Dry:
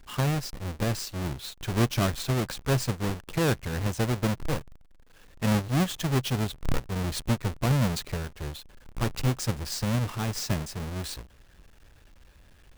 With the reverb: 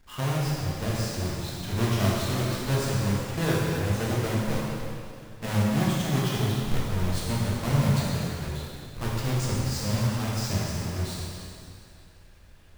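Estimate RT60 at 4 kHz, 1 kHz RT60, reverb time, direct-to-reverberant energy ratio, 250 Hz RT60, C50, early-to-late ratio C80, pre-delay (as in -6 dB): 2.3 s, 2.5 s, 2.5 s, -6.0 dB, 2.5 s, -2.5 dB, -0.5 dB, 5 ms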